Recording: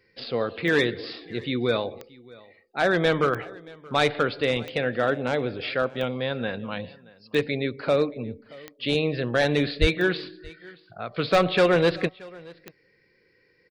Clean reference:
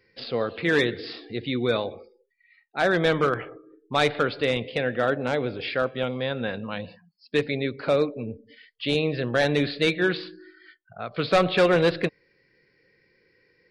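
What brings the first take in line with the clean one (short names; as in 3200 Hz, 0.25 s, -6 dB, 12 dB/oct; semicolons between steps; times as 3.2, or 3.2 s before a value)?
de-click; 9.8–9.92 HPF 140 Hz 24 dB/oct; inverse comb 0.627 s -23 dB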